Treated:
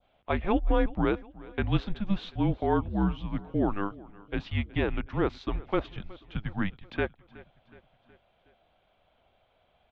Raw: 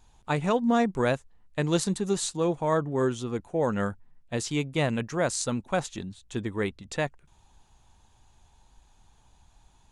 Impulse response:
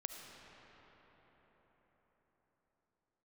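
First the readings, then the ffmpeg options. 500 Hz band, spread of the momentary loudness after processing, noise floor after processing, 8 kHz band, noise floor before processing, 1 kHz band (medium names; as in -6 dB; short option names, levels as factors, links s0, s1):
-4.5 dB, 10 LU, -69 dBFS, under -35 dB, -62 dBFS, -2.5 dB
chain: -af "highpass=f=160:t=q:w=0.5412,highpass=f=160:t=q:w=1.307,lowpass=f=3600:t=q:w=0.5176,lowpass=f=3600:t=q:w=0.7071,lowpass=f=3600:t=q:w=1.932,afreqshift=-200,adynamicequalizer=threshold=0.00501:dfrequency=2100:dqfactor=0.85:tfrequency=2100:tqfactor=0.85:attack=5:release=100:ratio=0.375:range=2:mode=cutabove:tftype=bell,aecho=1:1:369|738|1107|1476:0.0891|0.0481|0.026|0.014"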